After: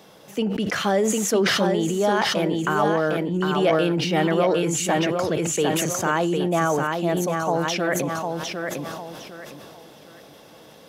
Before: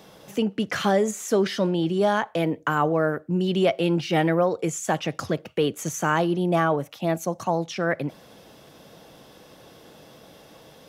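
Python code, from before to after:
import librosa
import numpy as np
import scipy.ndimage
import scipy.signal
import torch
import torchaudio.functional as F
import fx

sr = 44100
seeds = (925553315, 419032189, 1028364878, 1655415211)

y = fx.low_shelf(x, sr, hz=96.0, db=-9.0)
y = fx.echo_feedback(y, sr, ms=755, feedback_pct=30, wet_db=-5.0)
y = fx.sustainer(y, sr, db_per_s=21.0)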